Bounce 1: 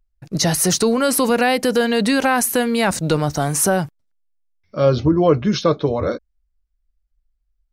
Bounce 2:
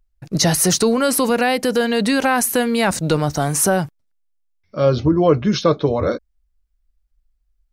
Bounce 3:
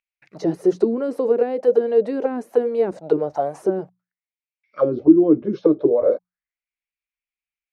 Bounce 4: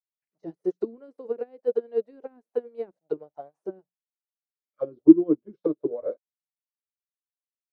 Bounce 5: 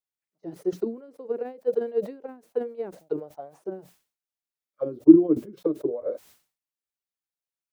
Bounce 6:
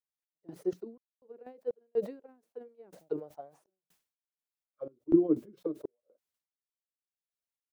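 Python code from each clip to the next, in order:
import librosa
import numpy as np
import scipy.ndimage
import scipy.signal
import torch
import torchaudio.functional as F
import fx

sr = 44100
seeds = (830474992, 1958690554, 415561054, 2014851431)

y1 = fx.rider(x, sr, range_db=5, speed_s=2.0)
y2 = fx.hum_notches(y1, sr, base_hz=60, count=3)
y2 = fx.auto_wah(y2, sr, base_hz=310.0, top_hz=2400.0, q=6.1, full_db=-12.0, direction='down')
y2 = y2 * librosa.db_to_amplitude(7.5)
y3 = fx.upward_expand(y2, sr, threshold_db=-35.0, expansion=2.5)
y3 = y3 * librosa.db_to_amplitude(1.0)
y4 = fx.sustainer(y3, sr, db_per_s=140.0)
y5 = fx.tremolo_random(y4, sr, seeds[0], hz=4.1, depth_pct=100)
y5 = y5 * librosa.db_to_amplitude(-4.5)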